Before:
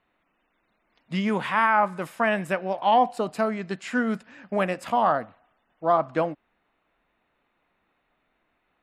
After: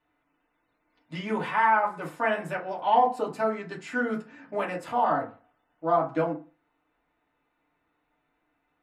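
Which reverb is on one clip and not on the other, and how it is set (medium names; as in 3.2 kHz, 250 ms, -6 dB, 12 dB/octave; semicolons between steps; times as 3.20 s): FDN reverb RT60 0.34 s, low-frequency decay 1×, high-frequency decay 0.45×, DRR -4 dB; trim -8.5 dB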